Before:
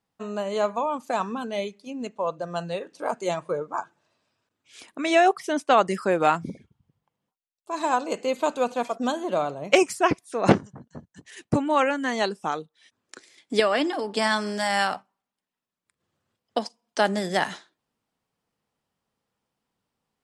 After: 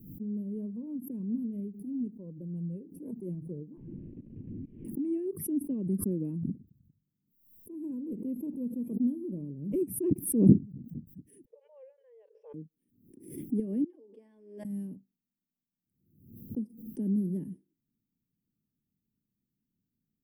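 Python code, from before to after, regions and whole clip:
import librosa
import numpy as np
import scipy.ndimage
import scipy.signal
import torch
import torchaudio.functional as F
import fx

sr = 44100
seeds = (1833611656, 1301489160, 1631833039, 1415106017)

y = fx.chain(x, sr, fx.delta_mod(bps=16000, step_db=-29.0),
    fx.level_steps(step_db=18), at=(3.77, 4.85))
y = fx.chain(y, sr, fx.brickwall_bandpass(low_hz=440.0, high_hz=6100.0),
    fx.air_absorb(metres=370.0), at=(11.45, 12.54))
y = fx.chain(y, sr, fx.highpass(hz=550.0, slope=24),
    fx.air_absorb(metres=170.0), at=(13.84, 14.65))
y = scipy.signal.sosfilt(scipy.signal.cheby2(4, 50, [680.0, 7400.0], 'bandstop', fs=sr, output='sos'), y)
y = fx.peak_eq(y, sr, hz=75.0, db=-4.5, octaves=1.4)
y = fx.pre_swell(y, sr, db_per_s=81.0)
y = y * 10.0 ** (2.5 / 20.0)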